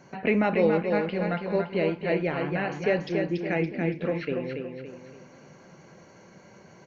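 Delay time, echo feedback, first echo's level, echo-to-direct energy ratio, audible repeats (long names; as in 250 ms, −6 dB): 283 ms, 40%, −5.0 dB, −4.0 dB, 4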